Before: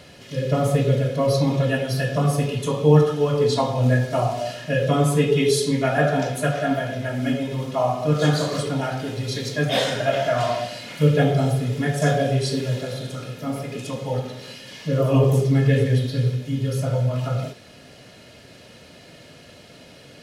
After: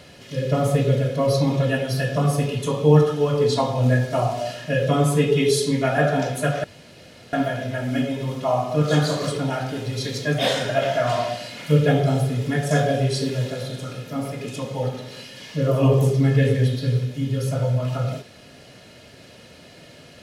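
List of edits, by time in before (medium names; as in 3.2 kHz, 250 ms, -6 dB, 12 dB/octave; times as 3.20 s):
6.64 s: insert room tone 0.69 s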